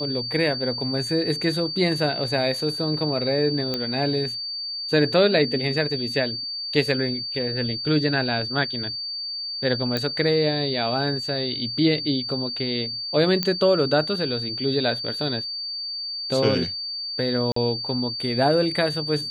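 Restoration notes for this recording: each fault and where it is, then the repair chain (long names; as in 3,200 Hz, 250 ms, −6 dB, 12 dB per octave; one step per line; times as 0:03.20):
whistle 4,600 Hz −28 dBFS
0:03.74: click −12 dBFS
0:09.97: click −11 dBFS
0:13.43: click −8 dBFS
0:17.52–0:17.56: drop-out 44 ms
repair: click removal
notch filter 4,600 Hz, Q 30
repair the gap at 0:17.52, 44 ms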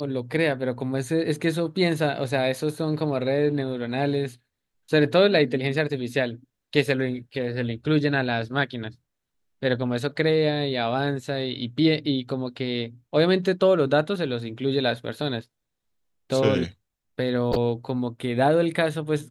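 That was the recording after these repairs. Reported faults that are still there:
none of them is left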